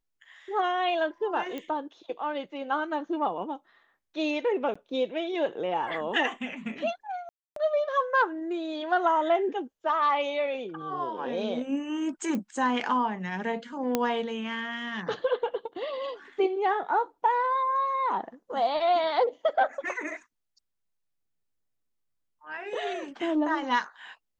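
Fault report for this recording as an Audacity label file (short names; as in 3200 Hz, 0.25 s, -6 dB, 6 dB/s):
1.580000	1.580000	pop -22 dBFS
4.740000	4.750000	gap 15 ms
7.290000	7.560000	gap 0.273 s
12.350000	12.350000	pop -20 dBFS
13.950000	13.950000	pop -10 dBFS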